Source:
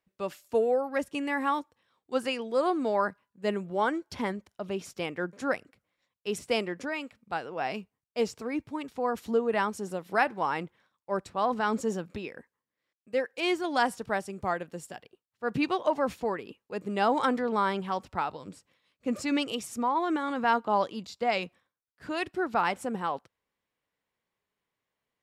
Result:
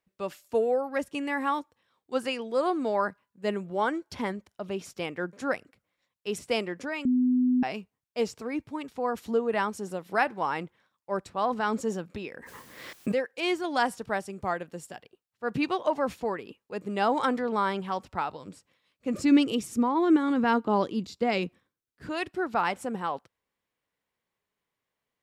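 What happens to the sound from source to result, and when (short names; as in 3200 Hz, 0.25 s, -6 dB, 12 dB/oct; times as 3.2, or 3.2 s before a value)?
7.05–7.63 bleep 251 Hz -20 dBFS
12.19–13.31 backwards sustainer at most 31 dB/s
19.14–22.09 resonant low shelf 480 Hz +7 dB, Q 1.5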